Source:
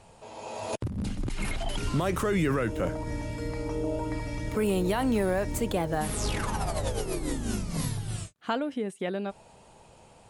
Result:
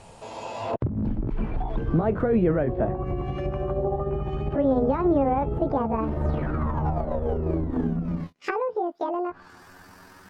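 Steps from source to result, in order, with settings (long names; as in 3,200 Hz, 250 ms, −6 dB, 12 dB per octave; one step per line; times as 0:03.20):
pitch glide at a constant tempo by +11 semitones starting unshifted
treble cut that deepens with the level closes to 850 Hz, closed at −29 dBFS
level +6.5 dB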